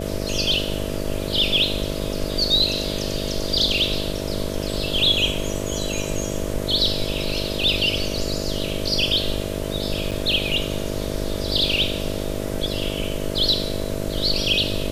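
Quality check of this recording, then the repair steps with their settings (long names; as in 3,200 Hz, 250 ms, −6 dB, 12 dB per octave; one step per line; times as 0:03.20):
mains buzz 50 Hz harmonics 13 −28 dBFS
0:10.11–0:10.12: drop-out 6.6 ms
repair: hum removal 50 Hz, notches 13
repair the gap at 0:10.11, 6.6 ms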